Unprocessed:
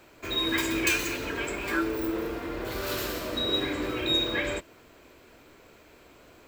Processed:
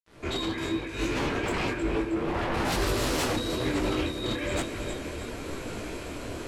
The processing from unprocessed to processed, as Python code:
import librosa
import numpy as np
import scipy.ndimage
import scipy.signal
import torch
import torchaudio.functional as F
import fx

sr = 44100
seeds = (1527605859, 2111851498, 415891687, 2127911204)

y = fx.fade_in_head(x, sr, length_s=0.8)
y = fx.over_compress(y, sr, threshold_db=-35.0, ratio=-0.5)
y = fx.low_shelf(y, sr, hz=370.0, db=9.0)
y = fx.quant_dither(y, sr, seeds[0], bits=10, dither='none')
y = fx.brickwall_lowpass(y, sr, high_hz=12000.0)
y = fx.echo_feedback(y, sr, ms=314, feedback_pct=52, wet_db=-10.5)
y = fx.fold_sine(y, sr, drive_db=10, ceiling_db=-18.0)
y = fx.high_shelf(y, sr, hz=4600.0, db=fx.steps((0.0, -9.0), (2.53, 4.0)))
y = fx.detune_double(y, sr, cents=36)
y = y * 10.0 ** (-2.5 / 20.0)